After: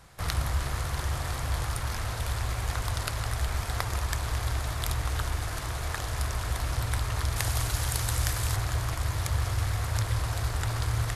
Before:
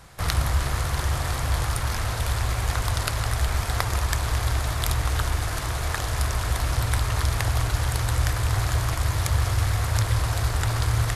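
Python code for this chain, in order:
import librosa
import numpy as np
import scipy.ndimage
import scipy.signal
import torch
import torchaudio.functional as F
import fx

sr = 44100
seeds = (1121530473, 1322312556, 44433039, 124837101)

y = fx.high_shelf(x, sr, hz=4000.0, db=9.0, at=(7.36, 8.56))
y = F.gain(torch.from_numpy(y), -5.5).numpy()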